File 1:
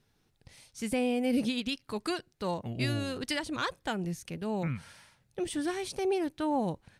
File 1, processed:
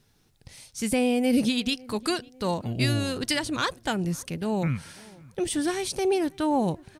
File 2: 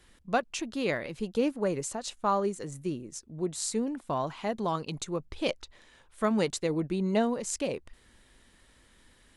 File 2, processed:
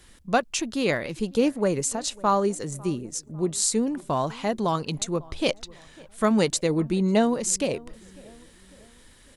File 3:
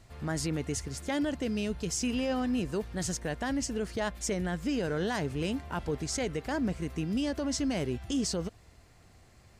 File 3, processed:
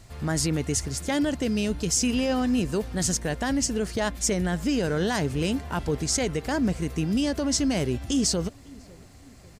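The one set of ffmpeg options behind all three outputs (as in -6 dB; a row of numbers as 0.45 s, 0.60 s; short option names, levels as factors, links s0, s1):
-filter_complex "[0:a]bass=f=250:g=2,treble=f=4000:g=5,asplit=2[s0][s1];[s1]adelay=549,lowpass=f=1600:p=1,volume=0.0708,asplit=2[s2][s3];[s3]adelay=549,lowpass=f=1600:p=1,volume=0.51,asplit=2[s4][s5];[s5]adelay=549,lowpass=f=1600:p=1,volume=0.51[s6];[s2][s4][s6]amix=inputs=3:normalize=0[s7];[s0][s7]amix=inputs=2:normalize=0,volume=1.78"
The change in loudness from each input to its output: +6.0 LU, +6.0 LU, +6.5 LU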